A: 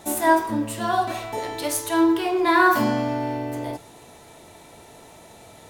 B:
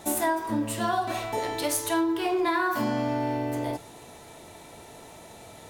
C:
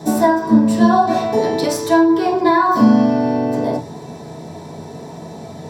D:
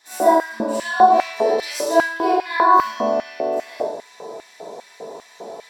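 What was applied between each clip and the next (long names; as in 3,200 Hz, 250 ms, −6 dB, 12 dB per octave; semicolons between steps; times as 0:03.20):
downward compressor 12 to 1, threshold −22 dBFS, peak gain reduction 11 dB
convolution reverb RT60 0.20 s, pre-delay 3 ms, DRR −3.5 dB; level −2.5 dB
four-comb reverb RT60 0.64 s, combs from 31 ms, DRR −10 dB; mains hum 60 Hz, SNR 25 dB; auto-filter high-pass square 2.5 Hz 480–2,000 Hz; level −13 dB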